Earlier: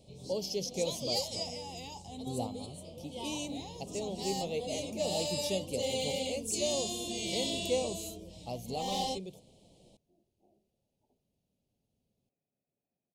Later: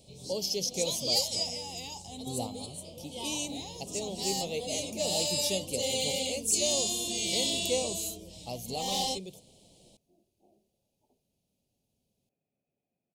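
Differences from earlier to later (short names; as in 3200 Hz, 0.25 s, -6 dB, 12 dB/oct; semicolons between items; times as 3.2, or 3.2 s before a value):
second sound +3.5 dB; master: add high shelf 3100 Hz +9.5 dB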